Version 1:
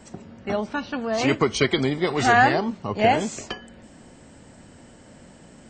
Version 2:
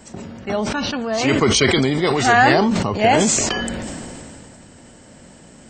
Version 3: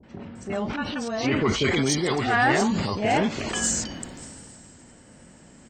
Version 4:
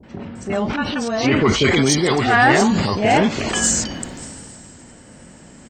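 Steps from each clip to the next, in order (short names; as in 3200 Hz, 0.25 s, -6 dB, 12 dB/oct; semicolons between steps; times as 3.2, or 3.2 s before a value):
high shelf 5300 Hz +6.5 dB; sustainer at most 21 dB/s; gain +2.5 dB
vibrato 1.3 Hz 34 cents; three bands offset in time lows, mids, highs 30/350 ms, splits 600/3800 Hz; added harmonics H 5 -26 dB, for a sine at -1 dBFS; gain -7 dB
speakerphone echo 0.38 s, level -24 dB; gain +7 dB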